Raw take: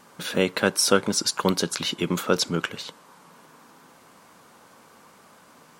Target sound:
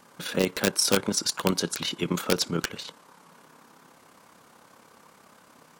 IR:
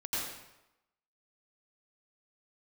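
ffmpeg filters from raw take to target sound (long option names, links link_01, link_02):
-filter_complex "[0:a]acrossover=split=460|7100[link_01][link_02][link_03];[link_02]aeval=exprs='(mod(5.01*val(0)+1,2)-1)/5.01':channel_layout=same[link_04];[link_01][link_04][link_03]amix=inputs=3:normalize=0,tremolo=f=34:d=0.519"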